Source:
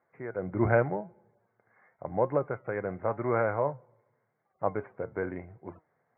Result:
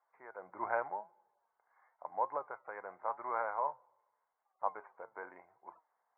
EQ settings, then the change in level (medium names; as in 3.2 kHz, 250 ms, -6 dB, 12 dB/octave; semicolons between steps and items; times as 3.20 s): band-pass filter 940 Hz, Q 3.5; tilt EQ +3 dB/octave; +1.5 dB